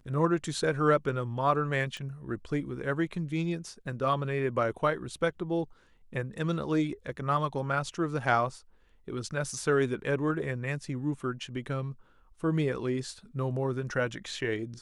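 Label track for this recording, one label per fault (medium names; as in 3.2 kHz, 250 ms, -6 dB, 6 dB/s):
1.970000	1.970000	pop -26 dBFS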